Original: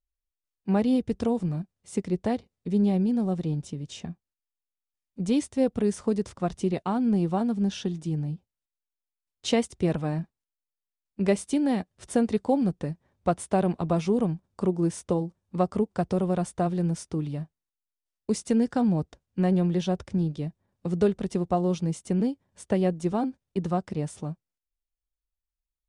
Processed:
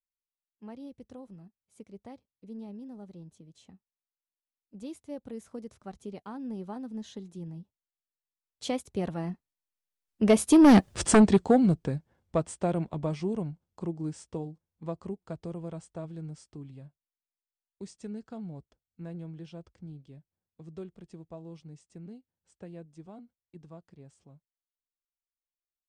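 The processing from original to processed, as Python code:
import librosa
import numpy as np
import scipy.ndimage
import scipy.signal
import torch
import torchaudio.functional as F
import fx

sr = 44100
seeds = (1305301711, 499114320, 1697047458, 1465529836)

y = fx.doppler_pass(x, sr, speed_mps=30, closest_m=3.2, pass_at_s=10.87)
y = fx.fold_sine(y, sr, drive_db=8, ceiling_db=-20.0)
y = F.gain(torch.from_numpy(y), 7.5).numpy()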